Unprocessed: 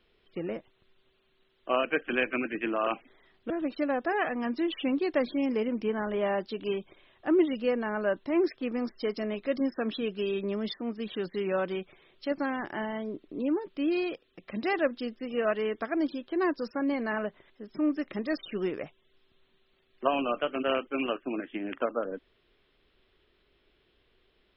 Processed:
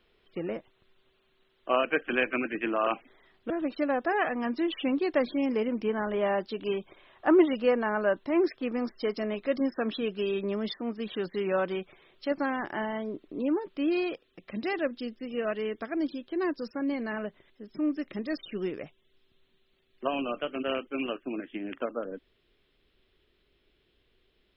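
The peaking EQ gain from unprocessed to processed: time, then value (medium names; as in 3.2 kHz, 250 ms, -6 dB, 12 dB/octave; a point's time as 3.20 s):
peaking EQ 1 kHz 2.1 oct
6.72 s +2 dB
7.29 s +10.5 dB
8.16 s +2.5 dB
14.10 s +2.5 dB
14.73 s -5 dB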